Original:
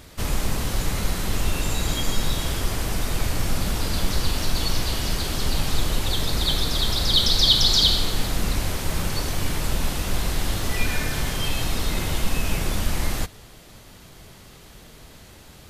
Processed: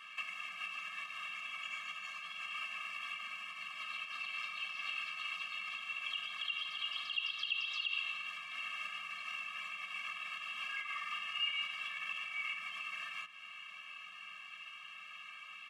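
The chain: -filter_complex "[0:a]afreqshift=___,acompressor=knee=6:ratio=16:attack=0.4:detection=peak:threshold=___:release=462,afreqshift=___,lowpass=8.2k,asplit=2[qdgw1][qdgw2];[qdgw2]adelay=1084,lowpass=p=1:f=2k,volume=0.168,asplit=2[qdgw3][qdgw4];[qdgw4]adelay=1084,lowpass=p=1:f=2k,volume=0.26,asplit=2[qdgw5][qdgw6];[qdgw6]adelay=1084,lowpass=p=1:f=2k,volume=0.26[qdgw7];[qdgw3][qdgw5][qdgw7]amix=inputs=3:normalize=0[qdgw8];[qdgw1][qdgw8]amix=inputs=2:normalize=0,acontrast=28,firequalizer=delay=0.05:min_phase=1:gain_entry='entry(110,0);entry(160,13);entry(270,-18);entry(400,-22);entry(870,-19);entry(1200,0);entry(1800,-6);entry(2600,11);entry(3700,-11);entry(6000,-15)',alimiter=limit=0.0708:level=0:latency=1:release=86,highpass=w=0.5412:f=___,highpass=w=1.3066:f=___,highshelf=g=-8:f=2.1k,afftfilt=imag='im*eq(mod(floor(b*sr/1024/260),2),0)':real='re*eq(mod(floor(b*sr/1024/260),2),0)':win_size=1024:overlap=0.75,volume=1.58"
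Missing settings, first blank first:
19, 0.0631, -350, 700, 700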